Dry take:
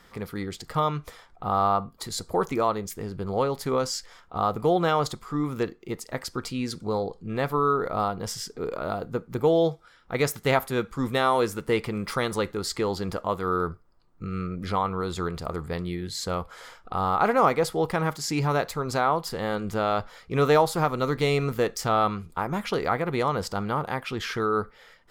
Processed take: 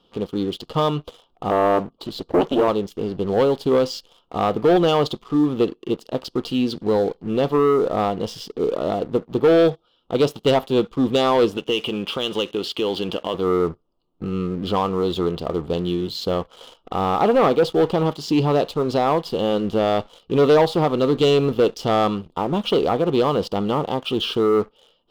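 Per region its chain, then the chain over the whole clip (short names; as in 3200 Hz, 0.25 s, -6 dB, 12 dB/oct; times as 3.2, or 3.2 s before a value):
1.5–2.68 LPF 3100 Hz 6 dB/oct + Doppler distortion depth 0.95 ms
11.57–13.34 HPF 160 Hz 6 dB/oct + band shelf 2300 Hz +11 dB 1.3 oct + compressor 2:1, threshold -30 dBFS
whole clip: EQ curve 100 Hz 0 dB, 300 Hz +11 dB, 530 Hz +9 dB, 1200 Hz +2 dB, 2000 Hz -21 dB, 2900 Hz +15 dB, 7500 Hz -11 dB; sample leveller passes 2; gain -7 dB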